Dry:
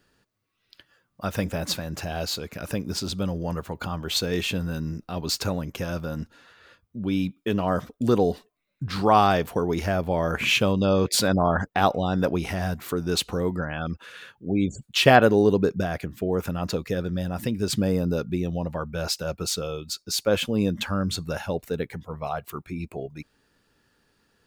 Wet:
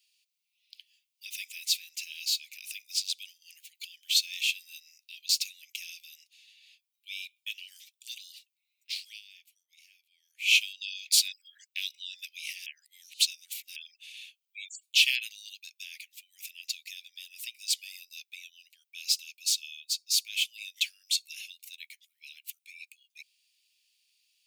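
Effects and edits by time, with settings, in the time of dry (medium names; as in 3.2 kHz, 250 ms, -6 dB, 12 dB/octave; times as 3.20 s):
9.02–10.55 s: dip -20 dB, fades 0.19 s
12.66–13.76 s: reverse
20.74–21.22 s: level flattener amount 50%
whole clip: steep high-pass 2.3 kHz 72 dB/octave; trim +1.5 dB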